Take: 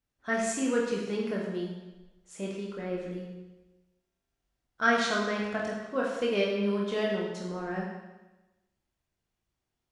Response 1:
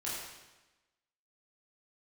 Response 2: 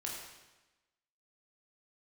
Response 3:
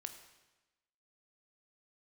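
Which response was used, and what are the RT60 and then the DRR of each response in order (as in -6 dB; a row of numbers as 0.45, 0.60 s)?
2; 1.1, 1.1, 1.1 s; -8.5, -3.5, 6.5 dB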